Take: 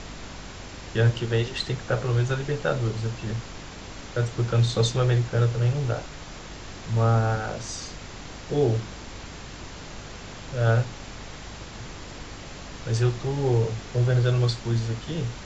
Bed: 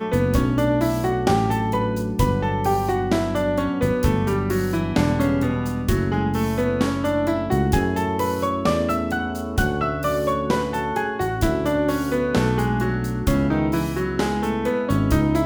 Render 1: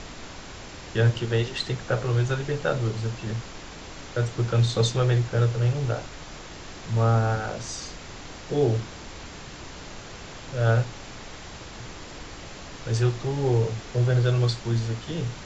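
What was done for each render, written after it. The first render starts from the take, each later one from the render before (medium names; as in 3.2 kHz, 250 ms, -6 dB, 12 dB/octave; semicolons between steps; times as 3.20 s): de-hum 50 Hz, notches 5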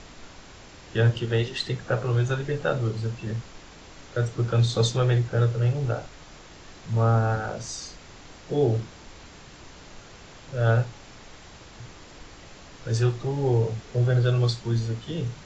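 noise print and reduce 6 dB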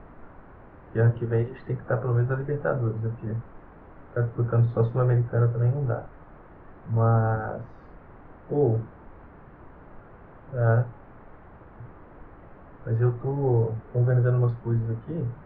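low-pass 1.5 kHz 24 dB/octave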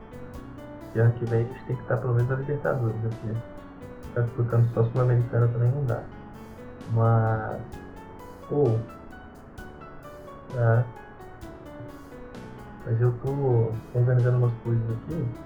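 add bed -22 dB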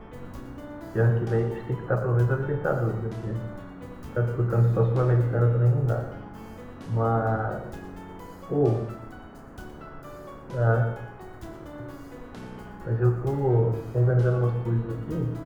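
delay 118 ms -12.5 dB; gated-style reverb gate 320 ms falling, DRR 7 dB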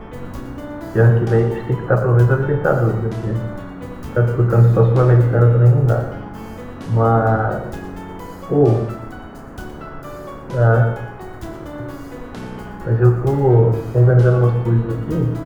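trim +9.5 dB; peak limiter -2 dBFS, peak gain reduction 2.5 dB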